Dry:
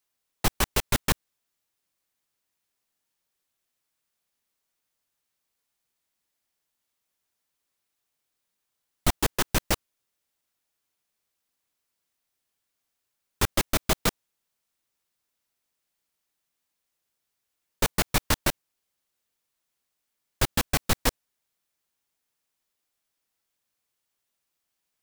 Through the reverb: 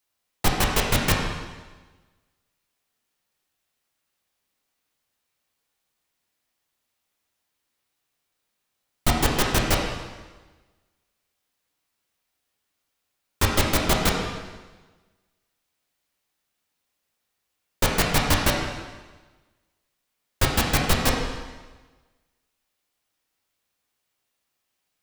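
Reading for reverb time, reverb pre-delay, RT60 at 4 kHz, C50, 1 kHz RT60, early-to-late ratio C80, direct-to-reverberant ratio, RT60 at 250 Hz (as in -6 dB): 1.3 s, 5 ms, 1.2 s, 2.0 dB, 1.3 s, 4.5 dB, -1.5 dB, 1.3 s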